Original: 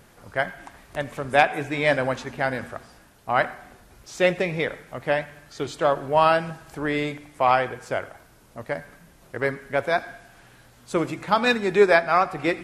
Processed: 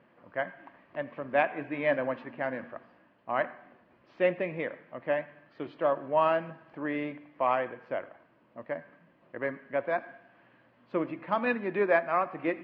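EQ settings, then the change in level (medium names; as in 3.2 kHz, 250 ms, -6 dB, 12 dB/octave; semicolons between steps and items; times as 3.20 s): distance through air 480 m; cabinet simulation 290–4300 Hz, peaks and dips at 420 Hz -10 dB, 790 Hz -9 dB, 1.4 kHz -9 dB, 2.2 kHz -4 dB, 3.7 kHz -10 dB; 0.0 dB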